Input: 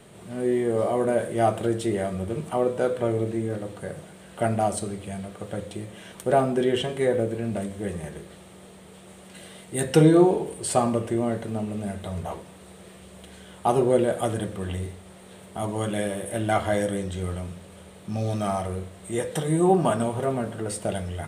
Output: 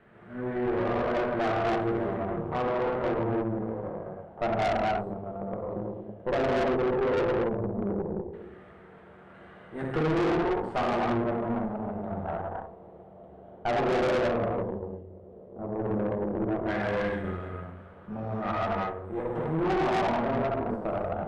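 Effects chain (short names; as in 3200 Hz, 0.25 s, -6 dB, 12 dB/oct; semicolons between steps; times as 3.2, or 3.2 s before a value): 14.64–15.59 compressor 6:1, threshold -36 dBFS, peak gain reduction 9 dB; LFO low-pass saw down 0.12 Hz 390–1700 Hz; non-linear reverb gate 0.36 s flat, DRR -4.5 dB; tube stage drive 19 dB, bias 0.8; gain -4.5 dB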